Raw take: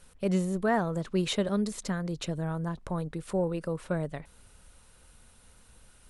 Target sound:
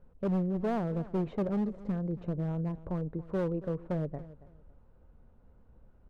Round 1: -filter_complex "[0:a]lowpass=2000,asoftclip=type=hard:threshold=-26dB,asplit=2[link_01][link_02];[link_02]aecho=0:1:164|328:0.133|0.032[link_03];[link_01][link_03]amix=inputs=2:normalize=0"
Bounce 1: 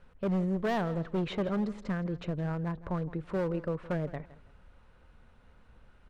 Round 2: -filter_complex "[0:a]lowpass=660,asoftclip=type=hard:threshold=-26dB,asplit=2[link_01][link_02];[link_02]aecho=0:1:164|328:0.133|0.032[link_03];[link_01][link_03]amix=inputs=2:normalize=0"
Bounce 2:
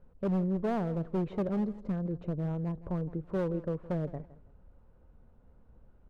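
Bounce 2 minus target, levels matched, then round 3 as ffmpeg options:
echo 114 ms early
-filter_complex "[0:a]lowpass=660,asoftclip=type=hard:threshold=-26dB,asplit=2[link_01][link_02];[link_02]aecho=0:1:278|556:0.133|0.032[link_03];[link_01][link_03]amix=inputs=2:normalize=0"

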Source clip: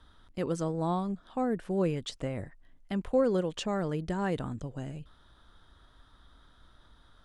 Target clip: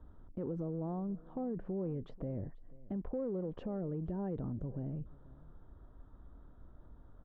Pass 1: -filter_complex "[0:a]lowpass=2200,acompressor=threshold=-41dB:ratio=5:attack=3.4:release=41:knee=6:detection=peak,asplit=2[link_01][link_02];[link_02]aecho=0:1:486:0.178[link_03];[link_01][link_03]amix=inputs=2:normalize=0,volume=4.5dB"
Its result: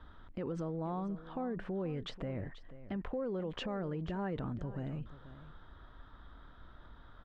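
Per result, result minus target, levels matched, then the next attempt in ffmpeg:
2,000 Hz band +16.0 dB; echo-to-direct +6.5 dB
-filter_complex "[0:a]lowpass=590,acompressor=threshold=-41dB:ratio=5:attack=3.4:release=41:knee=6:detection=peak,asplit=2[link_01][link_02];[link_02]aecho=0:1:486:0.178[link_03];[link_01][link_03]amix=inputs=2:normalize=0,volume=4.5dB"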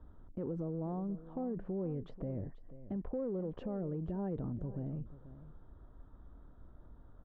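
echo-to-direct +6.5 dB
-filter_complex "[0:a]lowpass=590,acompressor=threshold=-41dB:ratio=5:attack=3.4:release=41:knee=6:detection=peak,asplit=2[link_01][link_02];[link_02]aecho=0:1:486:0.0841[link_03];[link_01][link_03]amix=inputs=2:normalize=0,volume=4.5dB"

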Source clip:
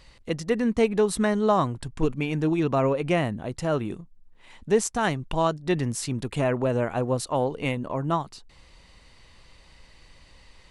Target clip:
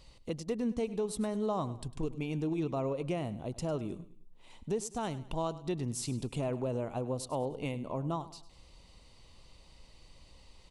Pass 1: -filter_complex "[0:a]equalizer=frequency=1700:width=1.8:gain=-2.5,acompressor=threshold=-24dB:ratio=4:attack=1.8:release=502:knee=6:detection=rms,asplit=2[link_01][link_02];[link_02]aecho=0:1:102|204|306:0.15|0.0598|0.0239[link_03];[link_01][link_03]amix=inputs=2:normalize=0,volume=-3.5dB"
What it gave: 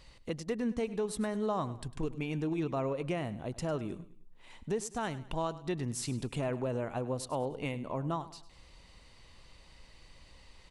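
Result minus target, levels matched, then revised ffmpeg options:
2,000 Hz band +5.0 dB
-filter_complex "[0:a]equalizer=frequency=1700:width=1.8:gain=-12,acompressor=threshold=-24dB:ratio=4:attack=1.8:release=502:knee=6:detection=rms,asplit=2[link_01][link_02];[link_02]aecho=0:1:102|204|306:0.15|0.0598|0.0239[link_03];[link_01][link_03]amix=inputs=2:normalize=0,volume=-3.5dB"

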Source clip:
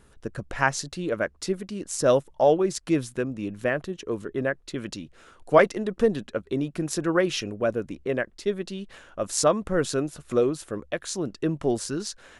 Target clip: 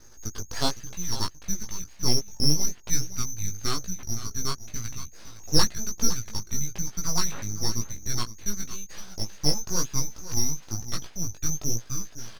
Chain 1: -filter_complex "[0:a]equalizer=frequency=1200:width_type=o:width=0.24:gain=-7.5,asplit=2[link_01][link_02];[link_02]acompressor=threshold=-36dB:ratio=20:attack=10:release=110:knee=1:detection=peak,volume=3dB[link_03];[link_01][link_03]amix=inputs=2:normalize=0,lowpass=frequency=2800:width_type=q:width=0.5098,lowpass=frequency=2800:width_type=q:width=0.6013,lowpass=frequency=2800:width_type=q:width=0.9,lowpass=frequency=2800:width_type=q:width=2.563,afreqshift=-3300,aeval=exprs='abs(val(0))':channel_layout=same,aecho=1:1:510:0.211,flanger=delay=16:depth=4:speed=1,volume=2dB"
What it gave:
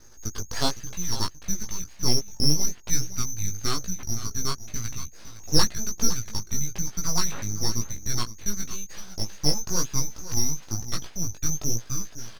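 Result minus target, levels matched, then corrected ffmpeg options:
downward compressor: peak gain reduction −7.5 dB
-filter_complex "[0:a]equalizer=frequency=1200:width_type=o:width=0.24:gain=-7.5,asplit=2[link_01][link_02];[link_02]acompressor=threshold=-44dB:ratio=20:attack=10:release=110:knee=1:detection=peak,volume=3dB[link_03];[link_01][link_03]amix=inputs=2:normalize=0,lowpass=frequency=2800:width_type=q:width=0.5098,lowpass=frequency=2800:width_type=q:width=0.6013,lowpass=frequency=2800:width_type=q:width=0.9,lowpass=frequency=2800:width_type=q:width=2.563,afreqshift=-3300,aeval=exprs='abs(val(0))':channel_layout=same,aecho=1:1:510:0.211,flanger=delay=16:depth=4:speed=1,volume=2dB"

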